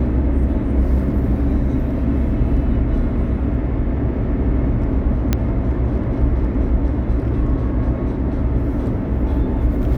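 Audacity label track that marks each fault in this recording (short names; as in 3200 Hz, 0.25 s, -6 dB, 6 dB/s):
5.330000	5.330000	pop -4 dBFS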